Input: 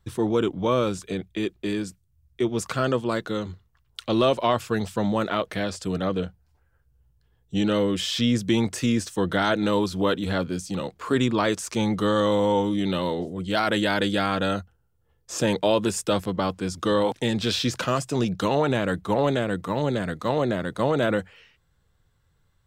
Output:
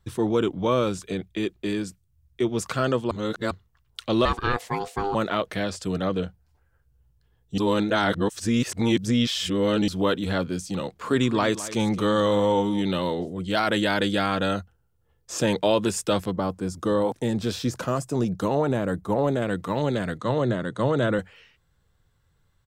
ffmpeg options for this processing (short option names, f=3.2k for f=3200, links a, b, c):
-filter_complex "[0:a]asettb=1/sr,asplit=3[a][b][c];[a]atrim=end=4.254[d];[b]atrim=start=4.25:end=5.15,asetpts=PTS-STARTPTS,afade=t=in:d=0.004:c=qsin,afade=t=out:st=0.896:d=0.004:c=qsin,aeval=exprs='val(0)*sin(2*PI*600*n/s)':c=same[e];[c]atrim=start=5.146[f];[d][e]acrossfade=d=0.004:c1=hsin:c2=qsin[g];[g][f]acrossfade=d=0.004:c1=qsin:c2=hsin,asplit=3[h][i][j];[h]afade=t=out:st=11.02:d=0.02[k];[i]aecho=1:1:212:0.178,afade=t=in:st=11.02:d=0.02,afade=t=out:st=12.81:d=0.02[l];[j]afade=t=in:st=12.81:d=0.02[m];[k][l][m]amix=inputs=3:normalize=0,asettb=1/sr,asplit=3[n][o][p];[n]atrim=end=16.314[q];[o]atrim=start=16.31:end=19.42,asetpts=PTS-STARTPTS,afade=t=in:d=0.004:c=qsin,afade=t=out:st=3.106:d=0.004:c=qsin,equalizer=f=3k:w=0.66:g=-10.5[r];[p]atrim=start=19.416[s];[q][r]acrossfade=d=0.004:c1=hsin:c2=qsin[t];[t][s]acrossfade=d=0.004:c1=qsin:c2=hsin,asettb=1/sr,asplit=3[u][v][w];[u]atrim=end=20.184[x];[v]atrim=start=20.18:end=21.19,asetpts=PTS-STARTPTS,afade=t=in:d=0.004:c=qsin,afade=t=out:st=1.006:d=0.004:c=qsin,highpass=110,equalizer=f=120:t=q:w=4:g=9,equalizer=f=750:t=q:w=4:g=-5,equalizer=f=2.4k:t=q:w=4:g=-8,equalizer=f=5k:t=q:w=4:g=-10,lowpass=f=8.8k:w=0.5412,lowpass=f=8.8k:w=1.3066[y];[w]atrim=start=21.186[z];[x][y]acrossfade=d=0.004:c1=hsin:c2=qsin[aa];[aa][z]acrossfade=d=0.004:c1=qsin:c2=hsin,asplit=5[ab][ac][ad][ae][af];[ab]atrim=end=3.112[ag];[ac]atrim=start=3.108:end=3.512,asetpts=PTS-STARTPTS,areverse[ah];[ad]atrim=start=3.508:end=7.582[ai];[ae]atrim=start=7.578:end=9.882,asetpts=PTS-STARTPTS,areverse[aj];[af]atrim=start=9.878[ak];[ag][ah]acrossfade=d=0.004:c1=hsin:c2=hsin[al];[al][ai]acrossfade=d=0.004:c1=hsin:c2=hsin[am];[am][aj]acrossfade=d=0.004:c1=hsin:c2=hsin[an];[an][ak]acrossfade=d=0.004:c1=hsin:c2=hsin"